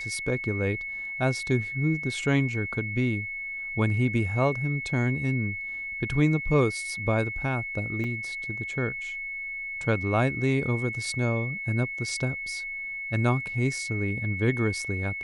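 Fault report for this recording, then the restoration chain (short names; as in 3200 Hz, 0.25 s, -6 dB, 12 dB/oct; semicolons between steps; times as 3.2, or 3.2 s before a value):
tone 2200 Hz -32 dBFS
8.04 gap 3.2 ms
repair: notch 2200 Hz, Q 30; interpolate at 8.04, 3.2 ms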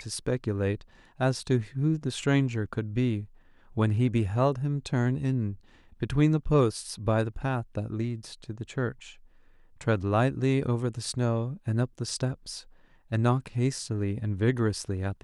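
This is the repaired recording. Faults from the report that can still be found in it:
none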